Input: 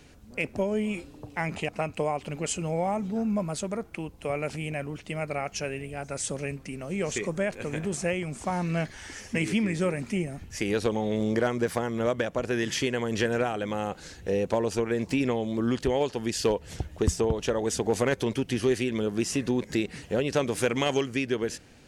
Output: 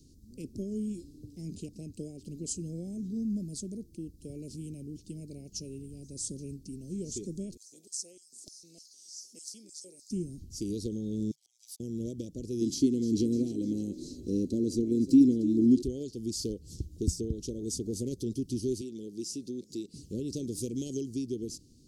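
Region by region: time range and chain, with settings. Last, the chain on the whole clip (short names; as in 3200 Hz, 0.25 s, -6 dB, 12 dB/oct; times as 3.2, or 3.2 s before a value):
7.57–10.11 bell 2700 Hz -8 dB 1.1 oct + LFO high-pass square 3.3 Hz 940–5100 Hz
11.31–11.8 brick-wall FIR high-pass 740 Hz + auto swell 0.27 s
12.61–15.82 small resonant body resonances 270/2100/4000 Hz, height 12 dB, ringing for 30 ms + frequency-shifting echo 0.302 s, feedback 53%, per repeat +40 Hz, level -14 dB
18.81–19.94 HPF 540 Hz 6 dB/oct + high shelf 8100 Hz -6.5 dB
whole clip: elliptic band-stop 340–4700 Hz, stop band 70 dB; dynamic EQ 150 Hz, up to -4 dB, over -47 dBFS, Q 5.6; gain -3 dB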